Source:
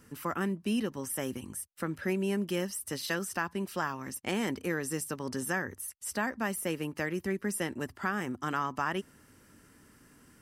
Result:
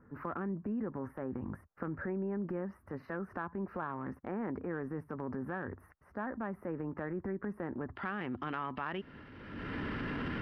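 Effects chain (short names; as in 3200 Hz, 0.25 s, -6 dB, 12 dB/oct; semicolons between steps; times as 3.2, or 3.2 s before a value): recorder AGC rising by 33 dB/s; inverse Chebyshev low-pass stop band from 3100 Hz, stop band 40 dB, from 7.95 s stop band from 6500 Hz; transient shaper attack -5 dB, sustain +5 dB; compressor, threshold -30 dBFS, peak gain reduction 4.5 dB; gain -2.5 dB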